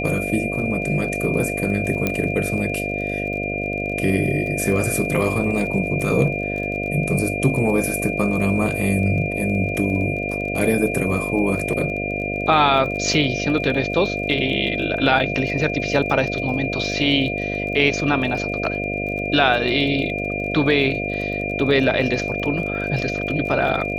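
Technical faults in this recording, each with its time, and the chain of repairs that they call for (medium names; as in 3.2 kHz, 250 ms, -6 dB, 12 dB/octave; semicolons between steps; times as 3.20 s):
buzz 50 Hz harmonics 14 -27 dBFS
crackle 27 per s -30 dBFS
whine 2.4 kHz -26 dBFS
2.07 s: pop -6 dBFS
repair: de-click; de-hum 50 Hz, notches 14; band-stop 2.4 kHz, Q 30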